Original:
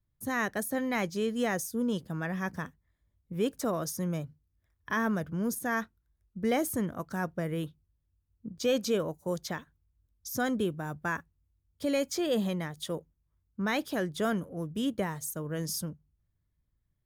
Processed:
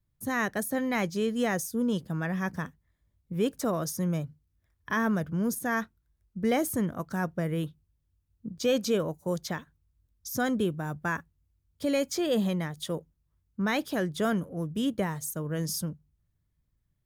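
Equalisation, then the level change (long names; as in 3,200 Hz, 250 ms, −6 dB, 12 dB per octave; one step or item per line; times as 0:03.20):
parametric band 160 Hz +2.5 dB 0.89 octaves
+1.5 dB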